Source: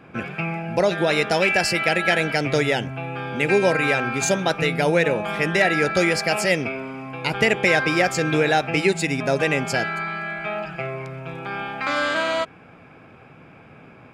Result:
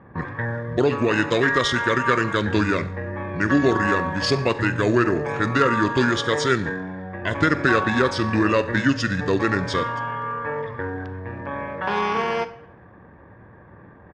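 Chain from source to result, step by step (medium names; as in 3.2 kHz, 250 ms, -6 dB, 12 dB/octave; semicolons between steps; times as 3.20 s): Schroeder reverb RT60 0.7 s, combs from 27 ms, DRR 13 dB; level-controlled noise filter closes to 2.9 kHz, open at -19.5 dBFS; pitch shift -6 st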